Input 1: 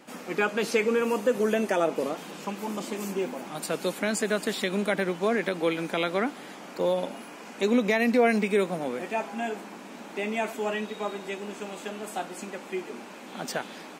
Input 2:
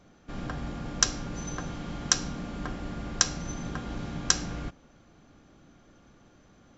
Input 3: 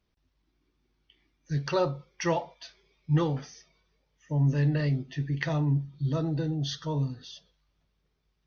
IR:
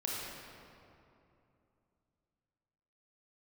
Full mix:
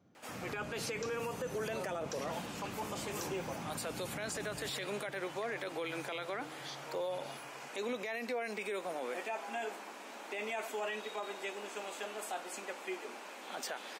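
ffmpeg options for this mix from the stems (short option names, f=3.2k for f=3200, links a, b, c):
-filter_complex "[0:a]adelay=150,volume=-2.5dB[a];[1:a]highpass=f=84:w=0.5412,highpass=f=84:w=1.3066,tiltshelf=f=790:g=4,volume=-12dB[b];[2:a]volume=-12.5dB,asplit=2[c][d];[d]volume=-20.5dB[e];[a][c]amix=inputs=2:normalize=0,highpass=480,acompressor=threshold=-31dB:ratio=6,volume=0dB[f];[3:a]atrim=start_sample=2205[g];[e][g]afir=irnorm=-1:irlink=0[h];[b][f][h]amix=inputs=3:normalize=0,alimiter=level_in=6dB:limit=-24dB:level=0:latency=1:release=12,volume=-6dB"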